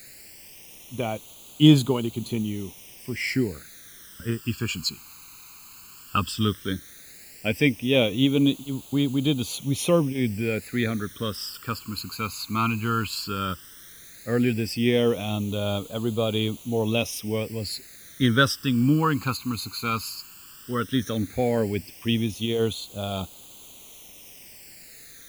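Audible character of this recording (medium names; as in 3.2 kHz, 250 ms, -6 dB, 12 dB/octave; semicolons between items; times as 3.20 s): a quantiser's noise floor 8-bit, dither triangular; phasing stages 12, 0.14 Hz, lowest notch 580–1800 Hz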